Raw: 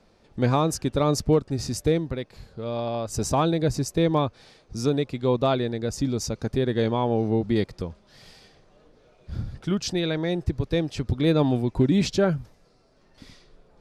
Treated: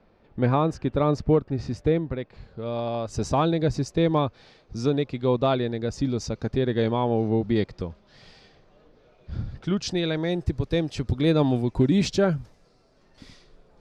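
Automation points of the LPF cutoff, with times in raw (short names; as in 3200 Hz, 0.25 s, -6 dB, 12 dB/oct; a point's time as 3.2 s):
2.15 s 2600 Hz
2.93 s 4800 Hz
9.51 s 4800 Hz
10.31 s 9900 Hz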